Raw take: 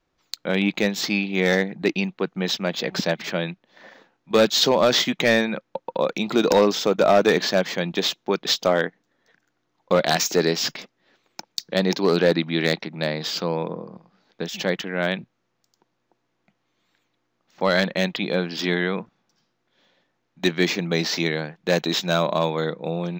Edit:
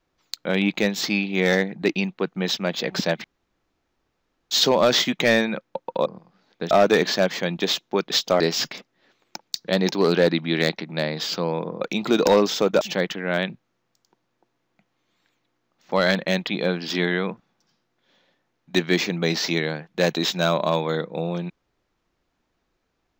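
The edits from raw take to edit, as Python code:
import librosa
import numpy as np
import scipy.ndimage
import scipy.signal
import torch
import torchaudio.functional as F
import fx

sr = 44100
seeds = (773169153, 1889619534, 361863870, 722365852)

y = fx.edit(x, sr, fx.room_tone_fill(start_s=3.24, length_s=1.27),
    fx.swap(start_s=6.06, length_s=1.0, other_s=13.85, other_length_s=0.65),
    fx.cut(start_s=8.75, length_s=1.69), tone=tone)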